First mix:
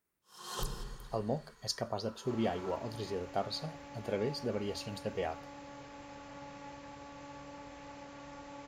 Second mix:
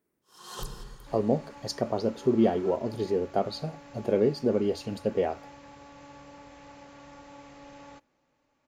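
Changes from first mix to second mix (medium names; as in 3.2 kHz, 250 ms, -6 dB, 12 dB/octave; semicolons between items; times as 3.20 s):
speech: add peaking EQ 320 Hz +13 dB 2.4 oct; second sound: entry -1.20 s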